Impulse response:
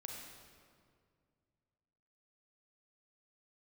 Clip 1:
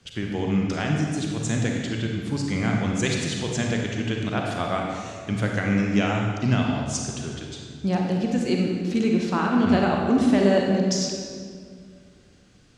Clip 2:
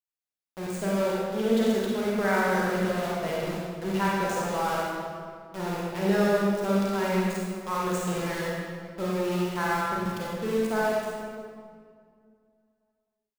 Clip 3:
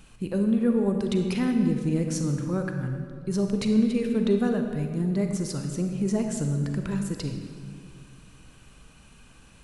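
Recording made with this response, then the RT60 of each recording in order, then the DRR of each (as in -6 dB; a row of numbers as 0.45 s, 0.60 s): 1; 2.1 s, 2.1 s, 2.1 s; 0.0 dB, -5.5 dB, 4.0 dB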